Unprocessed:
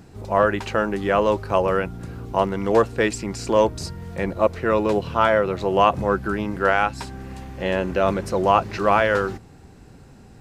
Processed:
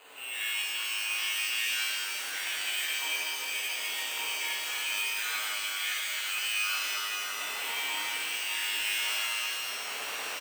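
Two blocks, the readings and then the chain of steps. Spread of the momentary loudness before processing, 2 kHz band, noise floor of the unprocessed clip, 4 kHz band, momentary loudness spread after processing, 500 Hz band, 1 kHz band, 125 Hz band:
11 LU, -2.5 dB, -47 dBFS, +7.5 dB, 4 LU, -31.5 dB, -19.0 dB, under -40 dB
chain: chord resonator G#2 fifth, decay 0.51 s; word length cut 8-bit, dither triangular; square tremolo 0.81 Hz, depth 60%, duty 50%; frequency inversion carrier 2.8 kHz; level rider gain up to 14.5 dB; careless resampling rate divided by 8×, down none, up hold; compression 6:1, threshold -41 dBFS, peak gain reduction 25.5 dB; high-pass 450 Hz 12 dB/octave; echo from a far wall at 98 m, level -7 dB; pitch-shifted reverb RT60 3.6 s, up +12 st, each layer -8 dB, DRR -8.5 dB

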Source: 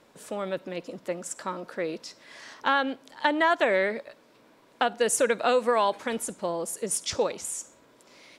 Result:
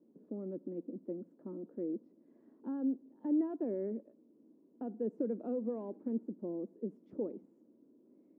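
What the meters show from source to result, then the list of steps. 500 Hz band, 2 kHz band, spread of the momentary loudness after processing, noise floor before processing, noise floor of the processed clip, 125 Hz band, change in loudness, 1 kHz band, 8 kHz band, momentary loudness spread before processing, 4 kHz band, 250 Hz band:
-13.5 dB, under -40 dB, 11 LU, -59 dBFS, -67 dBFS, no reading, -12.0 dB, -28.5 dB, under -40 dB, 14 LU, under -40 dB, -1.0 dB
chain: hard clipper -17.5 dBFS, distortion -15 dB; Butterworth band-pass 270 Hz, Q 1.7

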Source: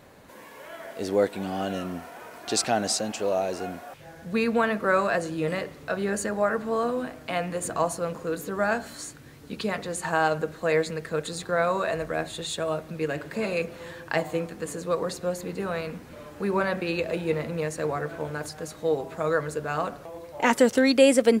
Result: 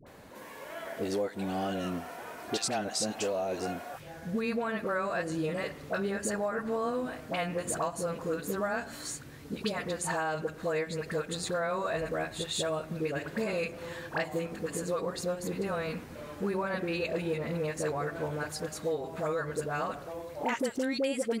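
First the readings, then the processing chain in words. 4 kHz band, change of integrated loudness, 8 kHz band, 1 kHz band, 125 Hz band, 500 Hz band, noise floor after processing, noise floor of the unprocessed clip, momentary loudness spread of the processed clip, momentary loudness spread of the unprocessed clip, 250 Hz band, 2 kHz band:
-4.5 dB, -6.5 dB, -4.0 dB, -6.5 dB, -3.5 dB, -6.5 dB, -47 dBFS, -47 dBFS, 8 LU, 13 LU, -6.0 dB, -6.5 dB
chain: compression 6:1, threshold -28 dBFS, peak gain reduction 14.5 dB; phase dispersion highs, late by 66 ms, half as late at 810 Hz

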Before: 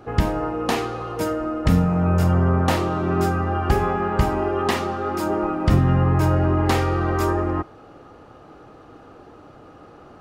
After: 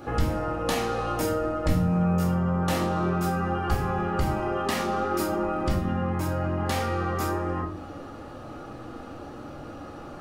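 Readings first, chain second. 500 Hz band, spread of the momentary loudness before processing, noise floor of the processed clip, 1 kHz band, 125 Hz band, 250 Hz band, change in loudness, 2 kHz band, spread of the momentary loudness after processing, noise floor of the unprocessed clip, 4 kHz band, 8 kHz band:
-5.0 dB, 7 LU, -41 dBFS, -4.5 dB, -7.0 dB, -5.0 dB, -5.5 dB, -4.5 dB, 16 LU, -46 dBFS, -3.0 dB, -1.0 dB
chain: treble shelf 5 kHz +8.5 dB; compression 4:1, threshold -28 dBFS, peak gain reduction 13.5 dB; simulated room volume 390 m³, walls furnished, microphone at 2.4 m

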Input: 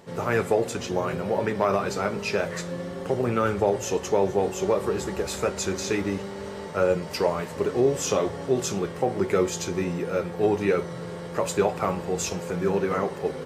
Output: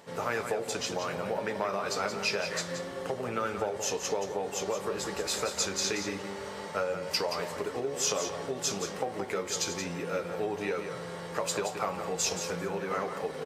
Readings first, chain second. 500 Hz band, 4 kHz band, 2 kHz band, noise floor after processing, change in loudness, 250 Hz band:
-8.5 dB, +2.5 dB, -3.0 dB, -40 dBFS, -6.0 dB, -10.5 dB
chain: compression, threshold -25 dBFS, peak gain reduction 9.5 dB; bass shelf 300 Hz -11 dB; delay 175 ms -8.5 dB; dynamic bell 4.8 kHz, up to +5 dB, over -49 dBFS, Q 1.7; band-stop 370 Hz, Q 12

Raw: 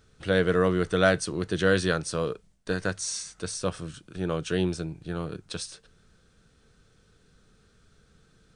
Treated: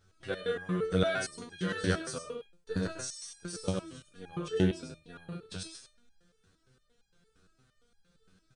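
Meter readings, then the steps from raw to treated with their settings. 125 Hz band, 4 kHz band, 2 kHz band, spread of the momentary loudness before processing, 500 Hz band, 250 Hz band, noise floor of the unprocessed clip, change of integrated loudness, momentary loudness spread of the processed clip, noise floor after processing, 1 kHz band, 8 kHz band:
-5.0 dB, -6.5 dB, -9.0 dB, 13 LU, -8.0 dB, -5.5 dB, -63 dBFS, -7.0 dB, 15 LU, -72 dBFS, -8.5 dB, -7.5 dB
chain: delay 101 ms -4.5 dB; resonator arpeggio 8.7 Hz 94–820 Hz; trim +4 dB

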